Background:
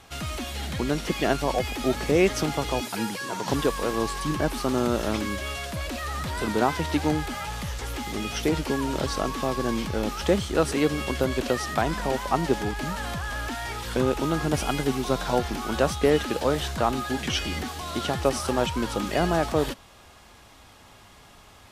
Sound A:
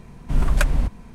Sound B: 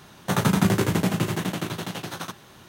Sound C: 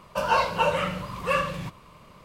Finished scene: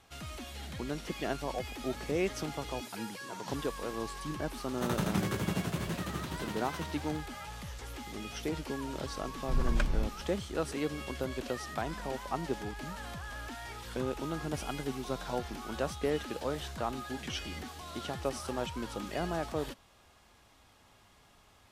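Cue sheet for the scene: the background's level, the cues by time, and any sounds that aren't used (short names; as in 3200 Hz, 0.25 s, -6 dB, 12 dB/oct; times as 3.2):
background -11 dB
4.53 add B -12 dB + warbling echo 0.329 s, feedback 59%, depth 166 cents, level -9 dB
9.19 add A -10.5 dB + air absorption 77 m
not used: C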